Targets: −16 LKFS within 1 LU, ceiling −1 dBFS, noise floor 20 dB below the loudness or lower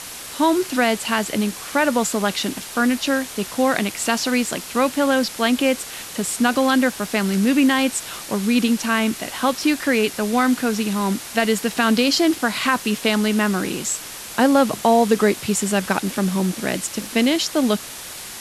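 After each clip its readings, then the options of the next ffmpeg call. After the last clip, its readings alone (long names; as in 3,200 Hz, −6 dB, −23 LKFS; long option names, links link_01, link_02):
background noise floor −35 dBFS; target noise floor −40 dBFS; integrated loudness −20.0 LKFS; sample peak −3.5 dBFS; target loudness −16.0 LKFS
→ -af "afftdn=noise_reduction=6:noise_floor=-35"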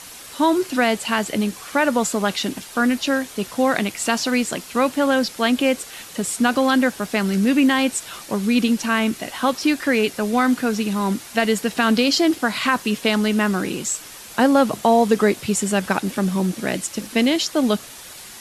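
background noise floor −39 dBFS; target noise floor −40 dBFS
→ -af "afftdn=noise_reduction=6:noise_floor=-39"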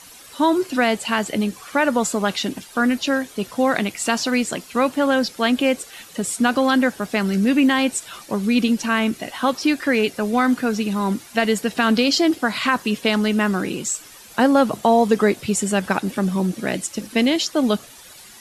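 background noise floor −44 dBFS; integrated loudness −20.5 LKFS; sample peak −4.0 dBFS; target loudness −16.0 LKFS
→ -af "volume=4.5dB,alimiter=limit=-1dB:level=0:latency=1"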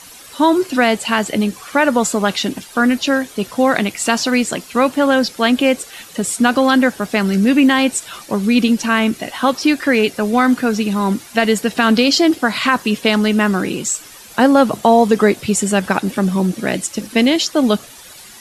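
integrated loudness −16.0 LKFS; sample peak −1.0 dBFS; background noise floor −39 dBFS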